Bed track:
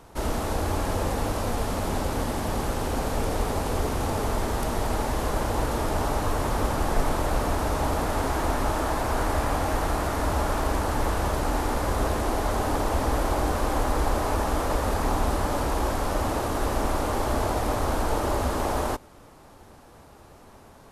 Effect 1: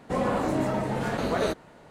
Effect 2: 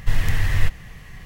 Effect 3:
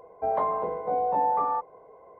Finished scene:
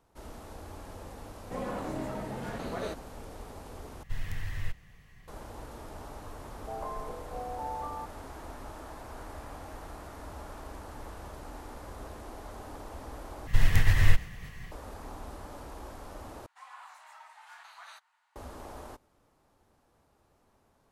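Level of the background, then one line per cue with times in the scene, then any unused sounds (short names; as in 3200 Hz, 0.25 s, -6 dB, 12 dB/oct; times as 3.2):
bed track -18.5 dB
1.41 add 1 -10 dB
4.03 replace with 2 -15.5 dB
6.45 add 3 -13 dB
13.47 replace with 2 + noise-modulated level 13 Hz, depth 55%
16.46 replace with 1 -16 dB + steep high-pass 850 Hz 48 dB/oct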